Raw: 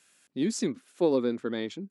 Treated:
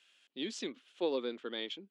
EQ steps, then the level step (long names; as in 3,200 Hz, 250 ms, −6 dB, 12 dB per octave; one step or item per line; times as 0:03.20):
band-pass filter 350–5,500 Hz
parametric band 3,100 Hz +13.5 dB 0.66 octaves
−7.0 dB